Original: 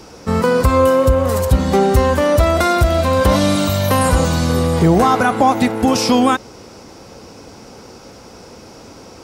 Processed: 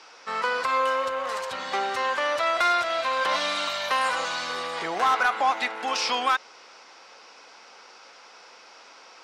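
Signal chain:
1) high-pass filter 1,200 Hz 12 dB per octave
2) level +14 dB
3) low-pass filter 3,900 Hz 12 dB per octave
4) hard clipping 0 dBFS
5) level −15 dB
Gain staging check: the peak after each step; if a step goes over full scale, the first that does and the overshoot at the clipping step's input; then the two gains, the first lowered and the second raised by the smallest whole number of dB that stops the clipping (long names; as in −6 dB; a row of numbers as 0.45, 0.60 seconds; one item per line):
−7.5, +6.5, +6.0, 0.0, −15.0 dBFS
step 2, 6.0 dB
step 2 +8 dB, step 5 −9 dB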